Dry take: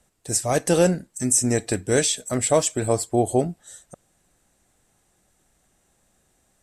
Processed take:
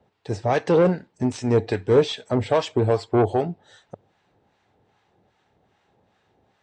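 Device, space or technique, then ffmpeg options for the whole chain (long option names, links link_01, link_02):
guitar amplifier with harmonic tremolo: -filter_complex "[0:a]acrossover=split=850[link_01][link_02];[link_01]aeval=exprs='val(0)*(1-0.7/2+0.7/2*cos(2*PI*2.5*n/s))':channel_layout=same[link_03];[link_02]aeval=exprs='val(0)*(1-0.7/2-0.7/2*cos(2*PI*2.5*n/s))':channel_layout=same[link_04];[link_03][link_04]amix=inputs=2:normalize=0,asoftclip=type=tanh:threshold=-19.5dB,highpass=93,equalizer=frequency=100:width_type=q:width=4:gain=8,equalizer=frequency=430:width_type=q:width=4:gain=7,equalizer=frequency=870:width_type=q:width=4:gain=8,lowpass=frequency=4100:width=0.5412,lowpass=frequency=4100:width=1.3066,volume=5dB"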